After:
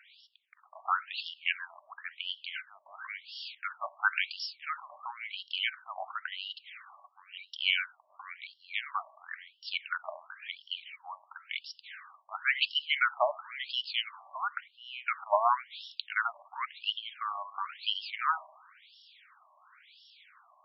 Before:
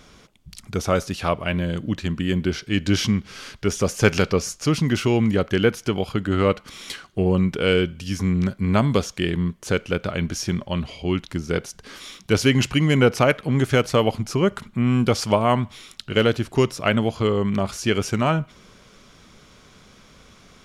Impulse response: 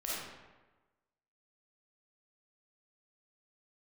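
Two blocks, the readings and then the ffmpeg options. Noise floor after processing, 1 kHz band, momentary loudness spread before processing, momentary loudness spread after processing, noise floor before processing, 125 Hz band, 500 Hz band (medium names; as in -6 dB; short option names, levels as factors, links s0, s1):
-66 dBFS, -5.5 dB, 8 LU, 17 LU, -52 dBFS, under -40 dB, -20.0 dB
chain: -filter_complex "[0:a]lowshelf=f=370:t=q:w=3:g=12.5,aeval=exprs='val(0)+0.00562*(sin(2*PI*60*n/s)+sin(2*PI*2*60*n/s)/2+sin(2*PI*3*60*n/s)/3+sin(2*PI*4*60*n/s)/4+sin(2*PI*5*60*n/s)/5)':c=same,asplit=2[s0][s1];[1:a]atrim=start_sample=2205,adelay=17[s2];[s1][s2]afir=irnorm=-1:irlink=0,volume=0.0562[s3];[s0][s3]amix=inputs=2:normalize=0,afftfilt=real='re*between(b*sr/1024,810*pow(4000/810,0.5+0.5*sin(2*PI*0.96*pts/sr))/1.41,810*pow(4000/810,0.5+0.5*sin(2*PI*0.96*pts/sr))*1.41)':imag='im*between(b*sr/1024,810*pow(4000/810,0.5+0.5*sin(2*PI*0.96*pts/sr))/1.41,810*pow(4000/810,0.5+0.5*sin(2*PI*0.96*pts/sr))*1.41)':win_size=1024:overlap=0.75"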